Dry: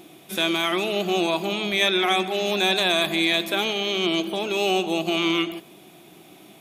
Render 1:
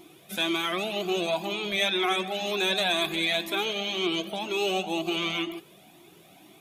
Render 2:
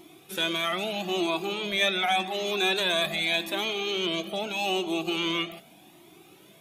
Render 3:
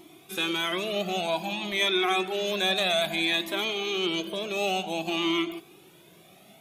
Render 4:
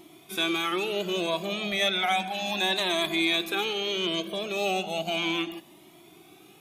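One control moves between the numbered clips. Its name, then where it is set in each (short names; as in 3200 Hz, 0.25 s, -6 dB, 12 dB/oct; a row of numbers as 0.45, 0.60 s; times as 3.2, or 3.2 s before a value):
cascading flanger, rate: 2, 0.83, 0.56, 0.34 Hz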